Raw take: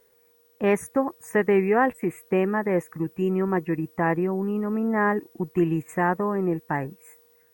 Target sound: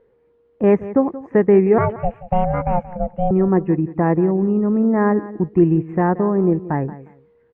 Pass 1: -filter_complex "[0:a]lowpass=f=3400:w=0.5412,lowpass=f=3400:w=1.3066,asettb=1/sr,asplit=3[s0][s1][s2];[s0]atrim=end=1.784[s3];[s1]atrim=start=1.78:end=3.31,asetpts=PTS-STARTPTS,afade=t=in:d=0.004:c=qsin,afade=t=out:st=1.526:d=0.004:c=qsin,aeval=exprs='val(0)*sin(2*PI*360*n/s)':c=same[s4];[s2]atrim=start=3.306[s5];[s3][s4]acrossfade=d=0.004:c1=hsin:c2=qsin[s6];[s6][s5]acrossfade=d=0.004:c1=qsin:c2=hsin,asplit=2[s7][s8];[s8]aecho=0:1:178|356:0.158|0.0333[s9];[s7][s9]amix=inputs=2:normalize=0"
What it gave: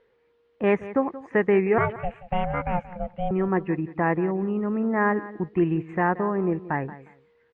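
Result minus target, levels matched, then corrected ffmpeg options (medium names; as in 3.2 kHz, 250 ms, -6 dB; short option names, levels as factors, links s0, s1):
1 kHz band +3.0 dB
-filter_complex "[0:a]lowpass=f=3400:w=0.5412,lowpass=f=3400:w=1.3066,tiltshelf=f=1200:g=9.5,asettb=1/sr,asplit=3[s0][s1][s2];[s0]atrim=end=1.784[s3];[s1]atrim=start=1.78:end=3.31,asetpts=PTS-STARTPTS,afade=t=in:d=0.004:c=qsin,afade=t=out:st=1.526:d=0.004:c=qsin,aeval=exprs='val(0)*sin(2*PI*360*n/s)':c=same[s4];[s2]atrim=start=3.306[s5];[s3][s4]acrossfade=d=0.004:c1=hsin:c2=qsin[s6];[s6][s5]acrossfade=d=0.004:c1=qsin:c2=hsin,asplit=2[s7][s8];[s8]aecho=0:1:178|356:0.158|0.0333[s9];[s7][s9]amix=inputs=2:normalize=0"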